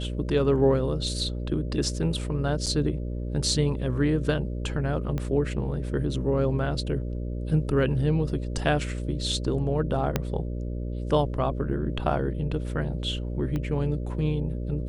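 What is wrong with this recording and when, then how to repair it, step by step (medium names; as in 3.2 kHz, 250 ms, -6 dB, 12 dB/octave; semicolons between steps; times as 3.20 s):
buzz 60 Hz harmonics 10 -31 dBFS
2.66–2.67 s: dropout 6.9 ms
5.18 s: pop -18 dBFS
10.16 s: pop -9 dBFS
13.56 s: pop -19 dBFS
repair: de-click; de-hum 60 Hz, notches 10; interpolate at 2.66 s, 6.9 ms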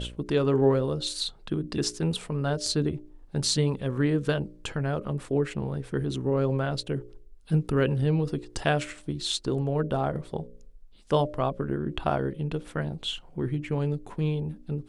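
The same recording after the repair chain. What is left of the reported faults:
5.18 s: pop
10.16 s: pop
13.56 s: pop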